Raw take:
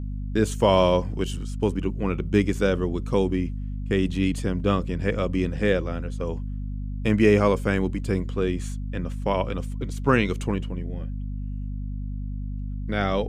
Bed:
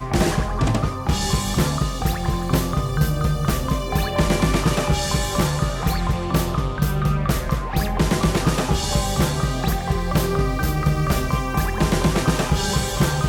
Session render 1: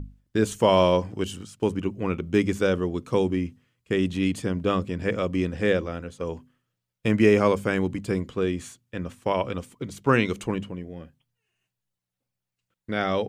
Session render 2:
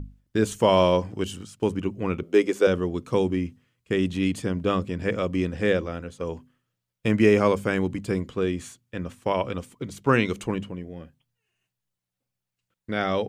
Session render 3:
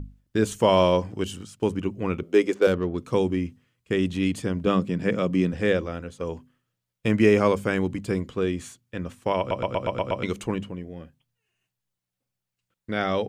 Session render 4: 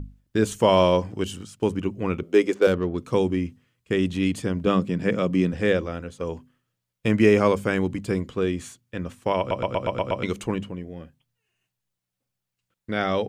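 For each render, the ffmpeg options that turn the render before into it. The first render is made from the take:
-af "bandreject=f=50:t=h:w=6,bandreject=f=100:t=h:w=6,bandreject=f=150:t=h:w=6,bandreject=f=200:t=h:w=6,bandreject=f=250:t=h:w=6"
-filter_complex "[0:a]asettb=1/sr,asplit=3[a][b][c];[a]atrim=end=2.234[d];[b]atrim=start=2.23:end=2.67,asetpts=PTS-STARTPTS,afade=t=in:d=0.004:c=qsin,afade=t=out:st=0.436:d=0.004:c=qsin,highpass=f=410:t=q:w=1.9[e];[c]atrim=start=2.666[f];[d][e]acrossfade=d=0.004:c1=hsin:c2=qsin[g];[g][f]acrossfade=d=0.004:c1=qsin:c2=hsin"
-filter_complex "[0:a]asettb=1/sr,asplit=3[a][b][c];[a]atrim=end=2.544[d];[b]atrim=start=2.54:end=2.98,asetpts=PTS-STARTPTS,afade=t=in:d=0.004:c=qsin,afade=t=out:st=0.436:d=0.004:c=qsin,adynamicsmooth=sensitivity=6:basefreq=1.7k[e];[c]atrim=start=2.976[f];[d][e]acrossfade=d=0.004:c1=hsin:c2=qsin[g];[g][f]acrossfade=d=0.004:c1=qsin:c2=hsin,asettb=1/sr,asplit=3[h][i][j];[h]atrim=end=4.664[k];[i]atrim=start=4.66:end=5.53,asetpts=PTS-STARTPTS,afade=t=in:d=0.004:c=qsin,afade=t=out:st=0.866:d=0.004:c=qsin,highpass=f=160:t=q:w=1.9[l];[j]atrim=start=5.526[m];[k][l]acrossfade=d=0.004:c1=hsin:c2=qsin[n];[n][m]acrossfade=d=0.004:c1=qsin:c2=hsin,asplit=8[o][p][q][r][s][t][u][v];[o]atrim=end=9.512[w];[p]atrim=start=9.388:end=9.512[x];[q]atrim=start=9.388:end=9.512[y];[r]atrim=start=9.388:end=9.512[z];[s]atrim=start=9.388:end=9.512[aa];[t]atrim=start=9.388:end=9.512[ab];[u]atrim=start=9.388:end=9.512[ac];[v]atrim=start=10.228[ad];[w][x]acrossfade=d=0.004:c1=hsin:c2=hsin[ae];[ae][y]acrossfade=d=0.004:c1=hsin:c2=hsin[af];[af][z]acrossfade=d=0.004:c1=hsin:c2=hsin[ag];[ag][aa]acrossfade=d=0.004:c1=hsin:c2=hsin[ah];[ah][ab]acrossfade=d=0.004:c1=hsin:c2=hsin[ai];[ai][ac]acrossfade=d=0.004:c1=hsin:c2=hsin[aj];[aj][ad]acrossfade=d=0.004:c1=hsin:c2=hsin"
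-af "volume=1dB"

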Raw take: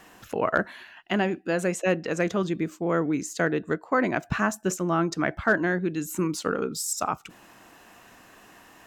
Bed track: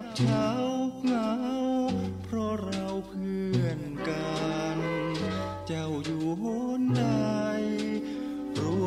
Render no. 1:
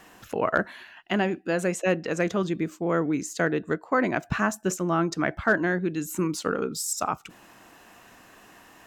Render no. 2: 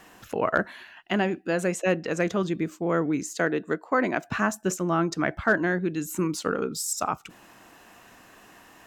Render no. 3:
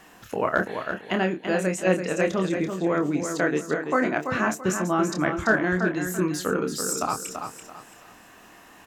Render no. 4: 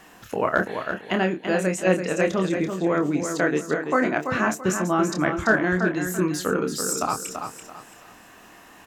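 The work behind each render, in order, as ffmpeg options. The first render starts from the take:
-af anull
-filter_complex "[0:a]asettb=1/sr,asplit=3[a][b][c];[a]atrim=end=3.334[d];[b]atrim=start=3.33:end=4.33,asetpts=PTS-STARTPTS,afade=t=in:d=0.004:c=qsin,afade=t=out:st=0.996:d=0.004:c=qsin,highpass=180[e];[c]atrim=start=4.326[f];[d][e]acrossfade=d=0.004:c1=hsin:c2=qsin[g];[g][f]acrossfade=d=0.004:c1=qsin:c2=hsin"
-filter_complex "[0:a]asplit=2[a][b];[b]adelay=27,volume=-6.5dB[c];[a][c]amix=inputs=2:normalize=0,aecho=1:1:335|670|1005|1340:0.447|0.138|0.0429|0.0133"
-af "volume=1.5dB"

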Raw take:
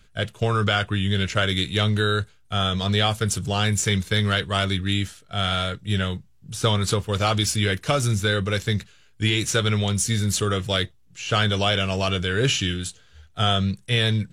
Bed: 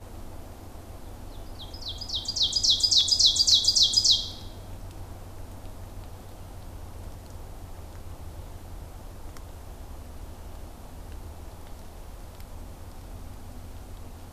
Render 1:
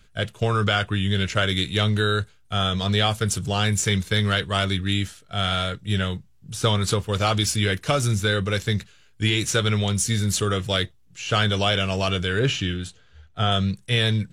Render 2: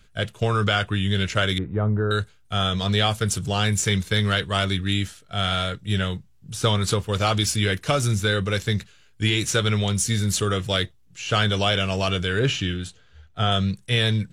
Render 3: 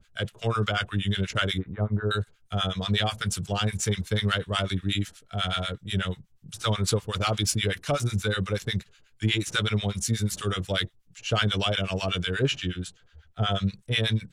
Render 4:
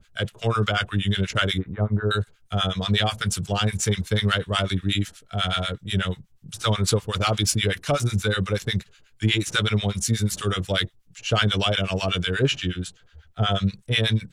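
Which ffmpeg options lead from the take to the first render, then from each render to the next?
-filter_complex "[0:a]asettb=1/sr,asplit=3[a][b][c];[a]atrim=end=12.394[d];[b]atrim=start=12.39:end=13.52,asetpts=PTS-STARTPTS,afade=t=in:d=0.004:c=qsin,afade=t=out:st=1.126:d=0.004:c=qsin,lowpass=f=2.8k:p=1[e];[c]atrim=start=13.516[f];[d][e]acrossfade=d=0.004:c1=hsin:c2=qsin[g];[g][f]acrossfade=d=0.004:c1=qsin:c2=hsin"
-filter_complex "[0:a]asettb=1/sr,asplit=3[a][b][c];[a]atrim=end=1.584[d];[b]atrim=start=1.58:end=2.11,asetpts=PTS-STARTPTS,afade=t=in:d=0.004:c=qsin,afade=t=out:st=0.526:d=0.004:c=qsin,lowpass=f=1.2k:w=0.5412,lowpass=f=1.2k:w=1.3066[e];[c]atrim=start=2.106[f];[d][e]acrossfade=d=0.004:c1=hsin:c2=qsin[g];[g][f]acrossfade=d=0.004:c1=qsin:c2=hsin"
-filter_complex "[0:a]acrossover=split=900[a][b];[a]aeval=exprs='val(0)*(1-1/2+1/2*cos(2*PI*8.2*n/s))':c=same[c];[b]aeval=exprs='val(0)*(1-1/2-1/2*cos(2*PI*8.2*n/s))':c=same[d];[c][d]amix=inputs=2:normalize=0"
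-af "volume=3.5dB"

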